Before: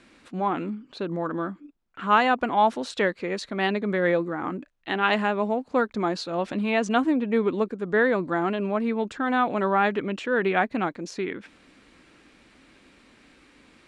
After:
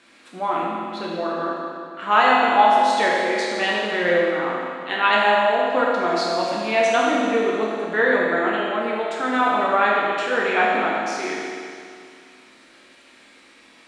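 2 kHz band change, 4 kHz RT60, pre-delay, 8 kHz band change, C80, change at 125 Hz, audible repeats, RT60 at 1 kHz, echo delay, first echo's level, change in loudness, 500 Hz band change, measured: +7.0 dB, 2.3 s, 9 ms, +8.0 dB, 0.0 dB, -5.5 dB, no echo, 2.3 s, no echo, no echo, +5.0 dB, +4.5 dB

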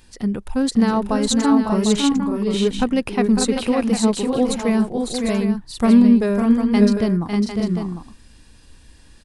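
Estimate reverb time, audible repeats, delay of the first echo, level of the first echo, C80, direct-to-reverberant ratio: no reverb, 3, 552 ms, -7.0 dB, no reverb, no reverb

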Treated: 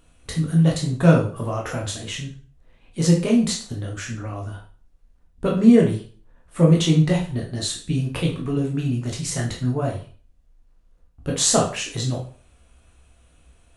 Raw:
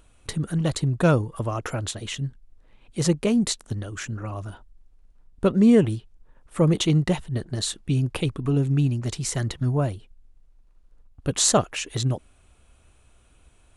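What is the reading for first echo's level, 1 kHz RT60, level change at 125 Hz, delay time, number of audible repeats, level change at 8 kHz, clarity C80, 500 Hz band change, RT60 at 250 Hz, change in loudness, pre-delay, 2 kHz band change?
no echo, 0.45 s, +2.5 dB, no echo, no echo, +1.5 dB, 12.5 dB, +2.0 dB, 0.45 s, +2.5 dB, 6 ms, +2.0 dB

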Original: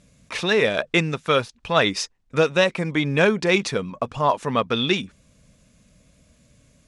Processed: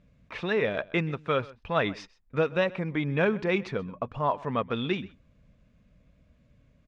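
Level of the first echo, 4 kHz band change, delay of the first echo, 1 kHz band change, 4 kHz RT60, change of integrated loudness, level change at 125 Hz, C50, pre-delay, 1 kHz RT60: -21.0 dB, -14.0 dB, 129 ms, -7.0 dB, no reverb, -7.5 dB, -5.0 dB, no reverb, no reverb, no reverb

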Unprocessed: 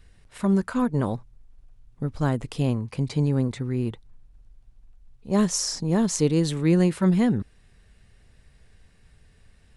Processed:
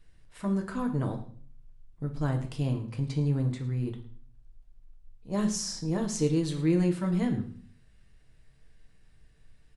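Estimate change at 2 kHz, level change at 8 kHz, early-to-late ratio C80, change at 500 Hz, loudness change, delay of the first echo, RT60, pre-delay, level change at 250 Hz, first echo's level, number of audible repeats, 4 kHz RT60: -6.5 dB, -7.0 dB, 13.5 dB, -6.5 dB, -5.5 dB, 108 ms, 0.50 s, 3 ms, -6.0 dB, -17.0 dB, 1, 0.45 s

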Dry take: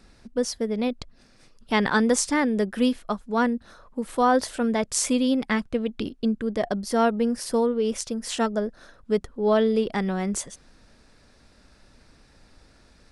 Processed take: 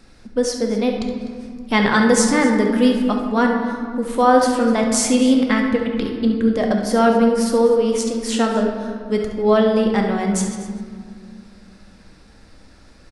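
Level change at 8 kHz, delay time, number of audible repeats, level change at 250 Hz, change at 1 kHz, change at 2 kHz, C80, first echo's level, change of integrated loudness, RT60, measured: +5.0 dB, 69 ms, 2, +7.5 dB, +6.5 dB, +6.5 dB, 5.0 dB, -10.5 dB, +7.0 dB, 2.0 s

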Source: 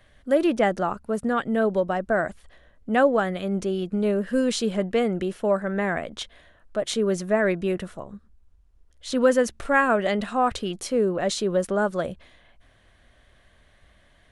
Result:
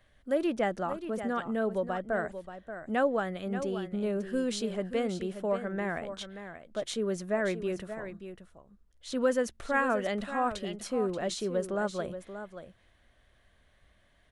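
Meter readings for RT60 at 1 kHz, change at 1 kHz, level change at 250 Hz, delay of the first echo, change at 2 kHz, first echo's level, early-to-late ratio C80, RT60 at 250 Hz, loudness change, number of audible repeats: no reverb, -7.5 dB, -7.5 dB, 581 ms, -7.5 dB, -10.5 dB, no reverb, no reverb, -8.0 dB, 1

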